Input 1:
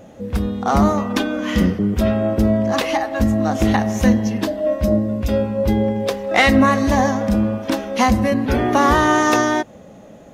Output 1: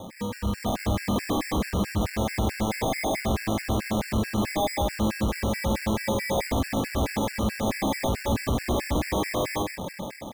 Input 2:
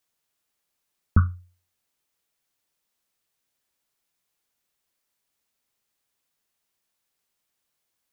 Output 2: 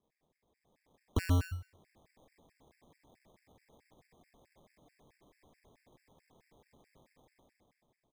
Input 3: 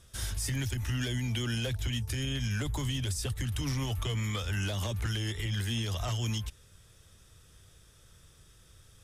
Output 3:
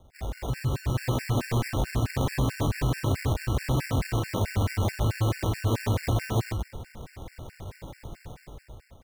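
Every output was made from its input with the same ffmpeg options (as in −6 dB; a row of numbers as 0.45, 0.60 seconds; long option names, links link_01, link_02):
-filter_complex "[0:a]acrossover=split=110[link_01][link_02];[link_02]acompressor=threshold=-28dB:ratio=6[link_03];[link_01][link_03]amix=inputs=2:normalize=0,alimiter=limit=-17.5dB:level=0:latency=1:release=132,dynaudnorm=framelen=200:gausssize=9:maxgain=15dB,aresample=16000,asoftclip=type=tanh:threshold=-27.5dB,aresample=44100,acrusher=samples=31:mix=1:aa=0.000001,aecho=1:1:127:0.708,afftfilt=real='re*gt(sin(2*PI*4.6*pts/sr)*(1-2*mod(floor(b*sr/1024/1400),2)),0)':imag='im*gt(sin(2*PI*4.6*pts/sr)*(1-2*mod(floor(b*sr/1024/1400),2)),0)':win_size=1024:overlap=0.75,volume=3.5dB"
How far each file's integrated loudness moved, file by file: −9.5, −9.5, +4.5 LU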